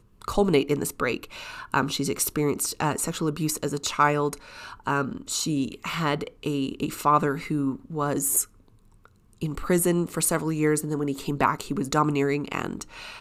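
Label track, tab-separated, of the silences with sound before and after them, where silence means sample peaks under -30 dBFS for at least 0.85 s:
8.430000	9.420000	silence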